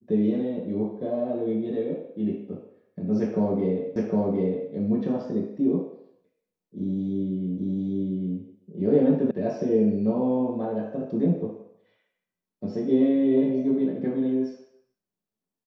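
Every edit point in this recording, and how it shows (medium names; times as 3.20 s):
3.96 s: repeat of the last 0.76 s
7.58 s: repeat of the last 0.8 s
9.31 s: sound stops dead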